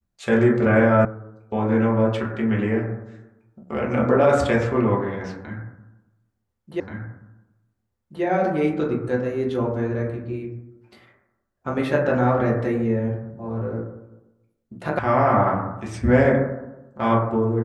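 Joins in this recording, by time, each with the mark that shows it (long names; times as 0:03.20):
0:01.05: cut off before it has died away
0:06.80: the same again, the last 1.43 s
0:14.99: cut off before it has died away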